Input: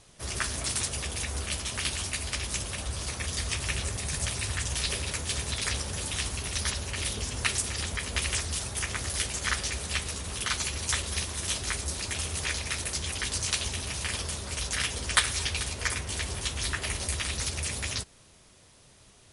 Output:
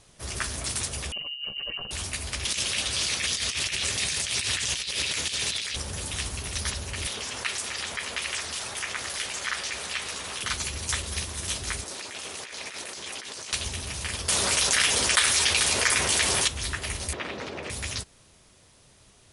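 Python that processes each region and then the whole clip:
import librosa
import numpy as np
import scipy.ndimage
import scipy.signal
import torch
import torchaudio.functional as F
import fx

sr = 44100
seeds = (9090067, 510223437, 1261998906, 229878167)

y = fx.chain(x, sr, fx.spec_expand(power=2.0),
    fx.freq_invert(carrier_hz=2900),
    fx.over_compress(threshold_db=-34.0, ratio=-0.5), at=(1.12, 1.91))
y = fx.chain(y, sr, fx.weighting(curve='D'),
    fx.over_compress(threshold_db=-29.0, ratio=-1.0), at=(2.45, 5.76))
y = fx.chain(y, sr, fx.highpass(hz=1000.0, slope=6),
    fx.high_shelf(hz=5700.0, db=-11.5),
    fx.env_flatten(amount_pct=50), at=(7.07, 10.43))
y = fx.chain(y, sr, fx.highpass(hz=320.0, slope=12),
    fx.high_shelf(hz=9000.0, db=-10.5),
    fx.over_compress(threshold_db=-38.0, ratio=-1.0), at=(11.84, 13.53))
y = fx.chain(y, sr, fx.highpass(hz=470.0, slope=6),
    fx.env_flatten(amount_pct=70), at=(14.28, 16.48))
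y = fx.chain(y, sr, fx.bandpass_edges(low_hz=200.0, high_hz=2600.0),
    fx.peak_eq(hz=440.0, db=9.0, octaves=2.7), at=(17.13, 17.7))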